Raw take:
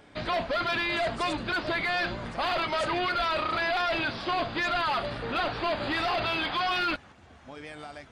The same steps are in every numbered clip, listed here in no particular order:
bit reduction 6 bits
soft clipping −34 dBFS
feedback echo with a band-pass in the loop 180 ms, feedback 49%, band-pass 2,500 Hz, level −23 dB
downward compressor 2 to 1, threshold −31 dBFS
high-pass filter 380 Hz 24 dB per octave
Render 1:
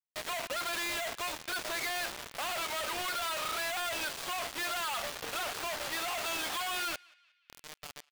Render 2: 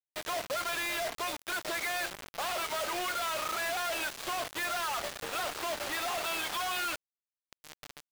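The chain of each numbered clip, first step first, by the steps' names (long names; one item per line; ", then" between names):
soft clipping, then high-pass filter, then downward compressor, then bit reduction, then feedback echo with a band-pass in the loop
downward compressor, then high-pass filter, then soft clipping, then feedback echo with a band-pass in the loop, then bit reduction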